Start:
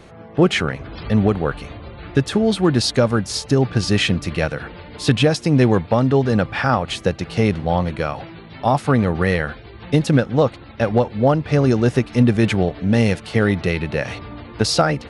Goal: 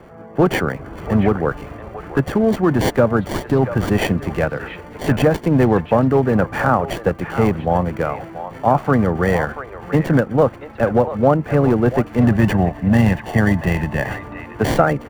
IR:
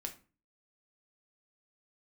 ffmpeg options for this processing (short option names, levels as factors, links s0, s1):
-filter_complex "[0:a]asettb=1/sr,asplit=3[s0][s1][s2];[s0]atrim=end=12.244[s3];[s1]atrim=start=12.24:end=14.17,asetpts=PTS-STARTPTS,afade=t=in:d=0.004:c=qsin,afade=t=out:st=1.926:d=0.004:c=qsin,aecho=1:1:1.1:0.66,atrim=end_sample=85113[s4];[s2]atrim=start=14.166[s5];[s3][s4]acrossfade=d=0.004:c1=hsin:c2=qsin[s6];[s6][s5]acrossfade=d=0.004:c1=qsin:c2=hsin,acrossover=split=170|480|2200[s7][s8][s9][s10];[s7]tremolo=f=25:d=0.788[s11];[s8]asoftclip=type=hard:threshold=0.141[s12];[s9]aecho=1:1:685:0.355[s13];[s10]acrusher=samples=34:mix=1:aa=0.000001[s14];[s11][s12][s13][s14]amix=inputs=4:normalize=0,volume=1.33"